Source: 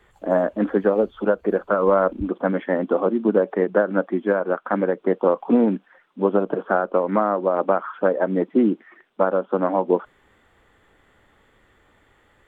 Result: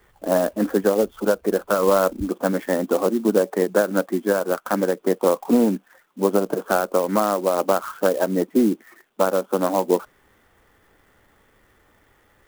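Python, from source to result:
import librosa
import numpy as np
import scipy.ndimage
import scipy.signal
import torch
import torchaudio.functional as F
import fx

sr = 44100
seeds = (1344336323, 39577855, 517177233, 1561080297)

y = fx.clock_jitter(x, sr, seeds[0], jitter_ms=0.036)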